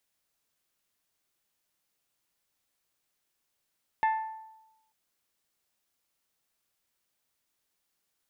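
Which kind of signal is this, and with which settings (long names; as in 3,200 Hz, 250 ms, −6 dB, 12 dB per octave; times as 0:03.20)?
struck glass bell, lowest mode 881 Hz, decay 0.98 s, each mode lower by 8.5 dB, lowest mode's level −21 dB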